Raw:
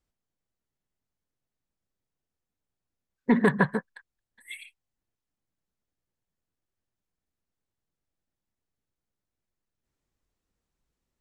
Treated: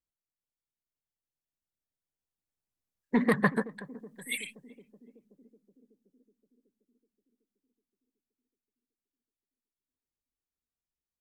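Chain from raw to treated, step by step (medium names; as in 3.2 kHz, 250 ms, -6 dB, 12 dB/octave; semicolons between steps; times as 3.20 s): Doppler pass-by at 4.28 s, 16 m/s, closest 6.2 m; treble shelf 6.3 kHz +8 dB; on a send: band-passed feedback delay 374 ms, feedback 70%, band-pass 320 Hz, level -17 dB; on the sum: vibrato with a chosen wave saw up 4.8 Hz, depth 100 cents; trim +5.5 dB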